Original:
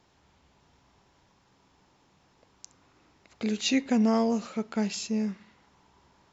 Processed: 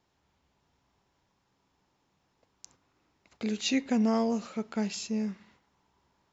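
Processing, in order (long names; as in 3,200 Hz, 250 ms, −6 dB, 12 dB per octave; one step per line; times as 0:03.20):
noise gate −59 dBFS, range −7 dB
level −2.5 dB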